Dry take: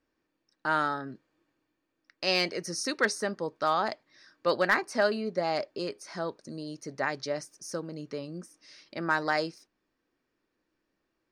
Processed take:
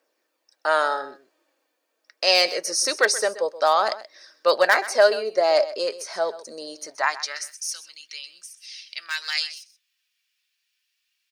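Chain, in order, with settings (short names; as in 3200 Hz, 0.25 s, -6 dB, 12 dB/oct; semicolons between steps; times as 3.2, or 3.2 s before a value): high shelf 3600 Hz +11 dB; phaser 0.24 Hz, delay 4.8 ms, feedback 30%; high-pass sweep 550 Hz -> 2800 Hz, 6.74–7.72; echo 0.128 s -15.5 dB; gain +3 dB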